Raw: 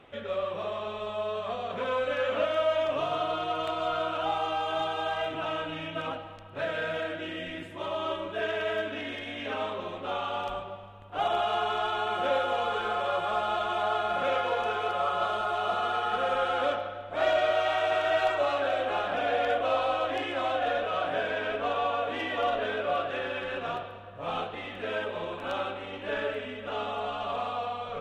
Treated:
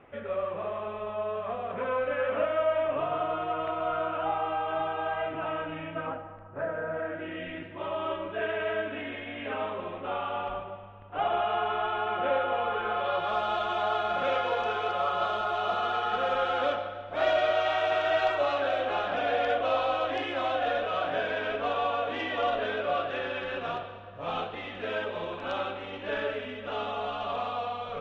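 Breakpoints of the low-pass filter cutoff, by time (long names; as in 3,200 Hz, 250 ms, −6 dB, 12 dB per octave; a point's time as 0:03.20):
low-pass filter 24 dB per octave
0:05.82 2,400 Hz
0:06.85 1,400 Hz
0:07.43 2,800 Hz
0:12.85 2,800 Hz
0:13.37 6,200 Hz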